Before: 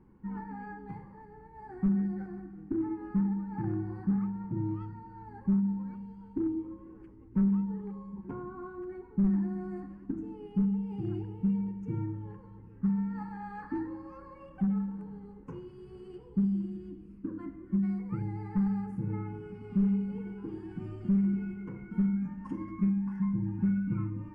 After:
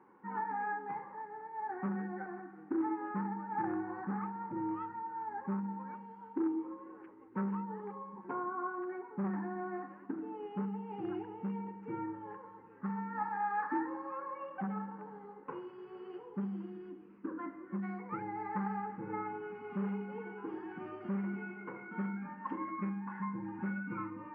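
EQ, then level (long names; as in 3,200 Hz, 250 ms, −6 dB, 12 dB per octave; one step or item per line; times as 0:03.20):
band-pass filter 680–2,000 Hz
high-frequency loss of the air 190 metres
+11.5 dB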